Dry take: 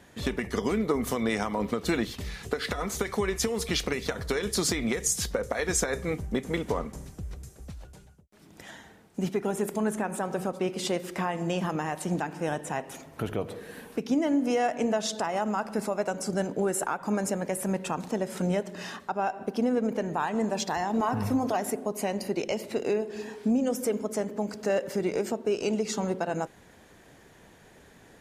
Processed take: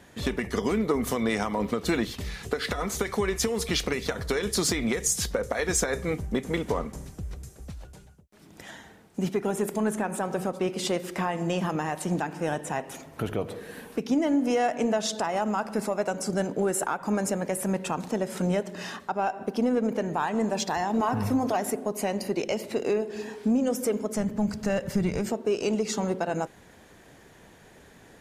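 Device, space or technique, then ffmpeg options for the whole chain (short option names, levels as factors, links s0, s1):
parallel distortion: -filter_complex "[0:a]asplit=2[s0][s1];[s1]asoftclip=type=hard:threshold=0.0562,volume=0.224[s2];[s0][s2]amix=inputs=2:normalize=0,asplit=3[s3][s4][s5];[s3]afade=t=out:st=24.15:d=0.02[s6];[s4]asubboost=boost=11.5:cutoff=110,afade=t=in:st=24.15:d=0.02,afade=t=out:st=25.28:d=0.02[s7];[s5]afade=t=in:st=25.28:d=0.02[s8];[s6][s7][s8]amix=inputs=3:normalize=0"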